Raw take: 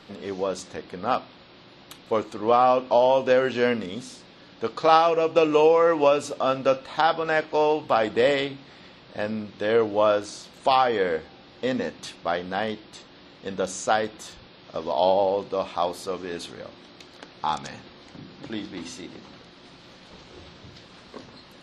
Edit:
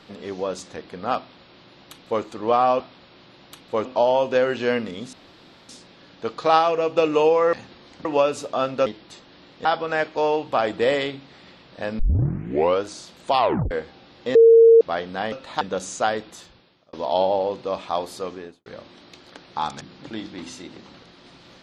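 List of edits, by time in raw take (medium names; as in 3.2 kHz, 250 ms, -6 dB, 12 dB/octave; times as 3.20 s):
1.18–2.23 s: copy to 2.80 s
4.08 s: insert room tone 0.56 s
6.73–7.02 s: swap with 12.69–13.48 s
9.36 s: tape start 0.84 s
10.76 s: tape stop 0.32 s
11.72–12.18 s: bleep 457 Hz -7.5 dBFS
14.09–14.80 s: fade out
16.14–16.53 s: studio fade out
17.68–18.20 s: move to 5.92 s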